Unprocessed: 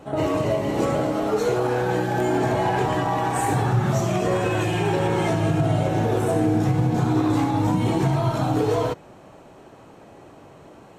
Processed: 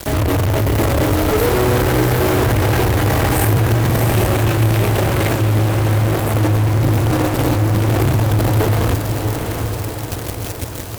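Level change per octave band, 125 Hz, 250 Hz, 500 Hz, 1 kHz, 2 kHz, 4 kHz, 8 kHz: +9.5, +3.5, +4.0, +2.5, +8.0, +9.5, +10.5 dB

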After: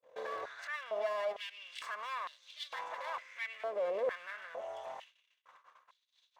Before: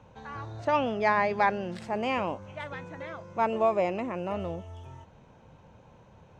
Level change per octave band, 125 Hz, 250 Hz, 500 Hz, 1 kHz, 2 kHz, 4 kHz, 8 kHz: under -35 dB, -28.0 dB, -8.5 dB, -13.0 dB, -8.0 dB, -2.0 dB, n/a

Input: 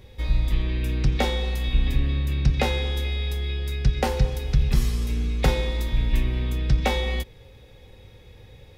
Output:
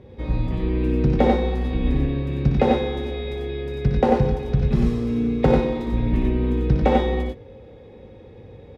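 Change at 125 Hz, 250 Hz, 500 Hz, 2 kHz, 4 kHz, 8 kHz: +1.5 dB, +10.5 dB, +9.0 dB, -2.5 dB, -6.5 dB, under -10 dB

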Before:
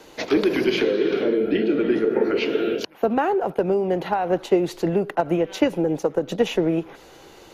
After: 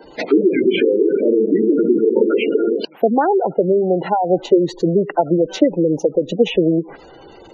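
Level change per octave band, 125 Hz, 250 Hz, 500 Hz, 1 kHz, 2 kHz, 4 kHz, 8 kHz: +5.0 dB, +6.0 dB, +6.0 dB, +5.0 dB, +0.5 dB, +1.5 dB, n/a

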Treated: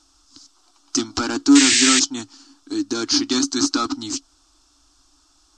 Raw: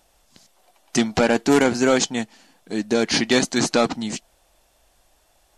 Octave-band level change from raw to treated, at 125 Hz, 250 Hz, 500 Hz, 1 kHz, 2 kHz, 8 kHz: -10.0, +2.5, -10.5, -2.0, 0.0, +8.5 dB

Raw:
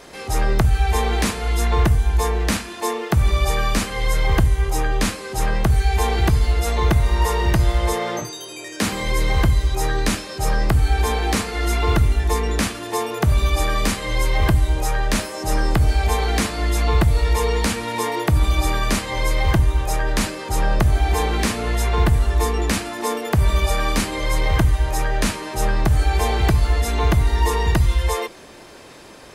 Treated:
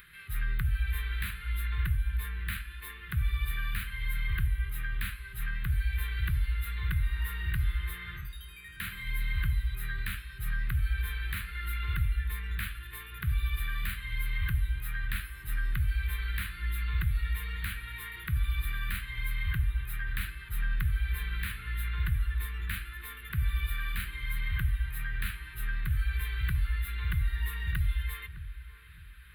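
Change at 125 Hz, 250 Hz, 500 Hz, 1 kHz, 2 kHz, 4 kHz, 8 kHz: -12.5, -23.0, -37.5, -24.5, -9.5, -15.5, -21.0 dB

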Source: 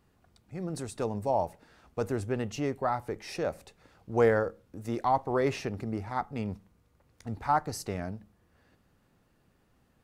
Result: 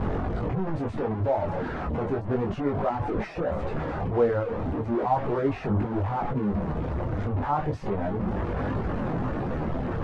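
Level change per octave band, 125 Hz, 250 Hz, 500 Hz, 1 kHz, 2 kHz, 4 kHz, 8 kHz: +9.5 dB, +7.5 dB, +3.5 dB, +2.5 dB, +1.5 dB, n/a, under -15 dB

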